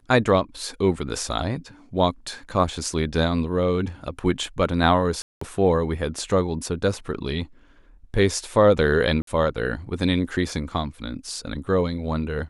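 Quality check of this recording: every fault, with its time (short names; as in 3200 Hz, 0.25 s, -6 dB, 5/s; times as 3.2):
5.22–5.41 gap 0.194 s
9.22–9.27 gap 53 ms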